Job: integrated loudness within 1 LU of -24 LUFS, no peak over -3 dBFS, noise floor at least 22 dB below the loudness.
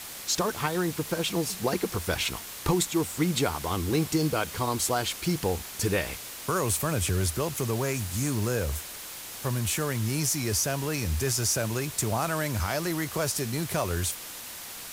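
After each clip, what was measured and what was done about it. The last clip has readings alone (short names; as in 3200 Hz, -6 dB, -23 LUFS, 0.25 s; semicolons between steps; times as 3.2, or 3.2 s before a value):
noise floor -41 dBFS; noise floor target -51 dBFS; loudness -28.5 LUFS; peak -13.0 dBFS; loudness target -24.0 LUFS
-> denoiser 10 dB, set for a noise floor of -41 dBFS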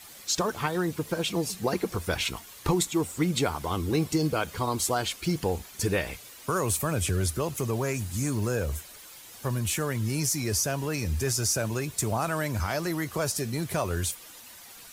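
noise floor -48 dBFS; noise floor target -51 dBFS
-> denoiser 6 dB, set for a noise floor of -48 dBFS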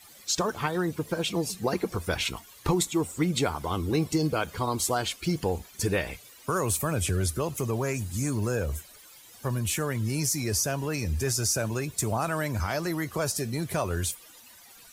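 noise floor -52 dBFS; loudness -28.5 LUFS; peak -13.5 dBFS; loudness target -24.0 LUFS
-> gain +4.5 dB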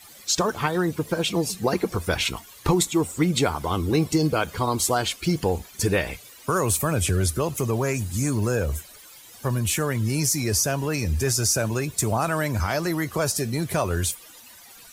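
loudness -24.0 LUFS; peak -9.0 dBFS; noise floor -47 dBFS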